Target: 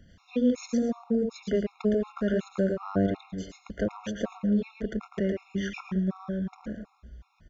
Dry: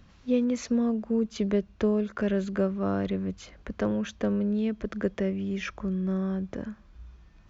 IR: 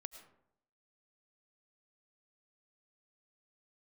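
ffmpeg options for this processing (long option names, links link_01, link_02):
-filter_complex "[0:a]aecho=1:1:132:0.178,asplit=2[link_01][link_02];[1:a]atrim=start_sample=2205,adelay=112[link_03];[link_02][link_03]afir=irnorm=-1:irlink=0,volume=1dB[link_04];[link_01][link_04]amix=inputs=2:normalize=0,afftfilt=real='re*gt(sin(2*PI*2.7*pts/sr)*(1-2*mod(floor(b*sr/1024/710),2)),0)':imag='im*gt(sin(2*PI*2.7*pts/sr)*(1-2*mod(floor(b*sr/1024/710),2)),0)':win_size=1024:overlap=0.75"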